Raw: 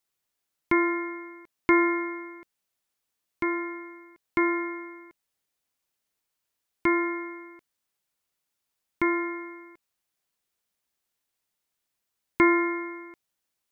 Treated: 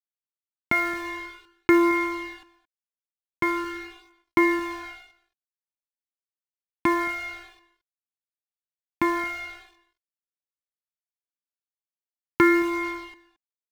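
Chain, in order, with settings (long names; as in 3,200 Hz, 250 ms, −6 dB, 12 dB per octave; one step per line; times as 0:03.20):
high-pass filter 93 Hz 12 dB per octave
high-shelf EQ 2,300 Hz −5 dB
in parallel at +2 dB: downward compressor 6 to 1, threshold −33 dBFS, peak gain reduction 15.5 dB
on the sum: dead-zone distortion −39.5 dBFS
floating-point word with a short mantissa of 4 bits
on a send: single-tap delay 221 ms −20.5 dB
on the sum: flanger whose copies keep moving one way falling 0.46 Hz
level +6.5 dB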